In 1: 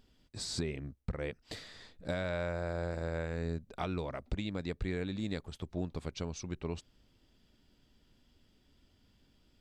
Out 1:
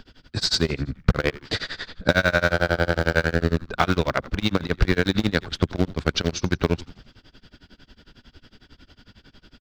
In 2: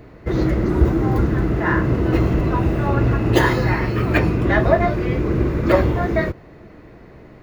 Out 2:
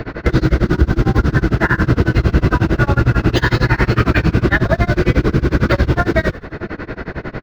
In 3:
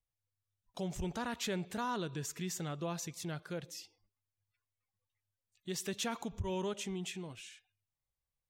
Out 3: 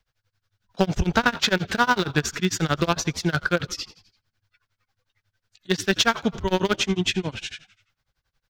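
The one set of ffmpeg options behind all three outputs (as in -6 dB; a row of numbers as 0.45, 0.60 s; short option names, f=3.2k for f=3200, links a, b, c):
-filter_complex "[0:a]acrossover=split=210|3000[a][b][c];[b]acompressor=threshold=-23dB:ratio=6[d];[a][d][c]amix=inputs=3:normalize=0,equalizer=f=1.5k:t=o:w=0.36:g=10.5,asplit=2[e][f];[f]acrusher=bits=4:mix=0:aa=0.000001,volume=-8dB[g];[e][g]amix=inputs=2:normalize=0,acompressor=threshold=-34dB:ratio=2.5,tremolo=f=11:d=0.97,highshelf=f=6.7k:t=q:w=1.5:g=-10.5,asplit=2[h][i];[i]asplit=4[j][k][l][m];[j]adelay=85,afreqshift=-79,volume=-19dB[n];[k]adelay=170,afreqshift=-158,volume=-24.4dB[o];[l]adelay=255,afreqshift=-237,volume=-29.7dB[p];[m]adelay=340,afreqshift=-316,volume=-35.1dB[q];[n][o][p][q]amix=inputs=4:normalize=0[r];[h][r]amix=inputs=2:normalize=0,alimiter=level_in=21dB:limit=-1dB:release=50:level=0:latency=1,volume=-1dB"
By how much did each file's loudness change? 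+15.0, +3.5, +16.0 LU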